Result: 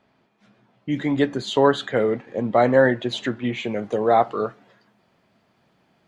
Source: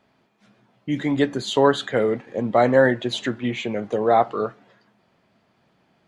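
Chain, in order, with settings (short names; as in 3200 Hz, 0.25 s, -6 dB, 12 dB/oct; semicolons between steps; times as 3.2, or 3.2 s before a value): high shelf 8100 Hz -9.5 dB, from 3.64 s +3 dB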